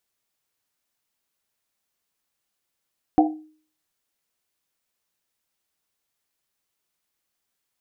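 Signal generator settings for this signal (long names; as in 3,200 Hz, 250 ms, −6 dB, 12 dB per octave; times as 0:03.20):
drum after Risset, pitch 310 Hz, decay 0.47 s, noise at 740 Hz, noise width 120 Hz, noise 35%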